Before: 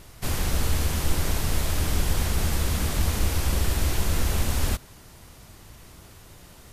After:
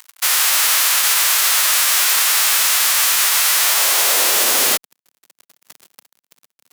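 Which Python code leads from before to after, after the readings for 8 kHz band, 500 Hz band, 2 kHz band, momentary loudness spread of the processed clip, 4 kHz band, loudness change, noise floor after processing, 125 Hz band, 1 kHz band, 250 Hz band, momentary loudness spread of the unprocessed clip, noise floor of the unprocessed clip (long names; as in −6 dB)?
+19.0 dB, +4.5 dB, +16.5 dB, 1 LU, +17.5 dB, +14.5 dB, below −85 dBFS, below −30 dB, +12.5 dB, −8.5 dB, 2 LU, −49 dBFS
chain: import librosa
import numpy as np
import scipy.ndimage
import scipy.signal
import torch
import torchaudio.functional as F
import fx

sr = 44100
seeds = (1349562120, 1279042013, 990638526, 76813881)

y = fx.envelope_flatten(x, sr, power=0.1)
y = fx.fuzz(y, sr, gain_db=37.0, gate_db=-37.0)
y = fx.filter_sweep_highpass(y, sr, from_hz=1100.0, to_hz=190.0, start_s=3.52, end_s=4.95, q=1.0)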